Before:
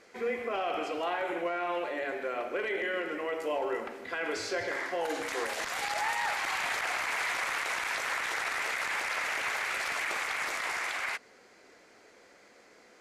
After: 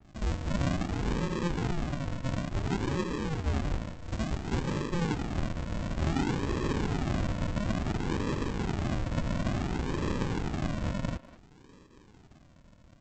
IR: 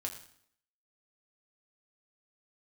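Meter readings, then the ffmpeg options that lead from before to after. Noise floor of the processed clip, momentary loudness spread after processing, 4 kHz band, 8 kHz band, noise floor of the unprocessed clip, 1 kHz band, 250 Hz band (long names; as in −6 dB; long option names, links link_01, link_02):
−57 dBFS, 4 LU, −5.0 dB, −6.5 dB, −59 dBFS, −5.0 dB, +12.0 dB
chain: -filter_complex "[0:a]aresample=16000,acrusher=samples=31:mix=1:aa=0.000001:lfo=1:lforange=18.6:lforate=0.57,aresample=44100,asplit=2[link_01][link_02];[link_02]adelay=200,highpass=300,lowpass=3400,asoftclip=type=hard:threshold=-30.5dB,volume=-13dB[link_03];[link_01][link_03]amix=inputs=2:normalize=0,adynamicequalizer=threshold=0.00251:dfrequency=3800:dqfactor=0.7:tfrequency=3800:tqfactor=0.7:attack=5:release=100:ratio=0.375:range=2.5:mode=cutabove:tftype=highshelf,volume=2.5dB"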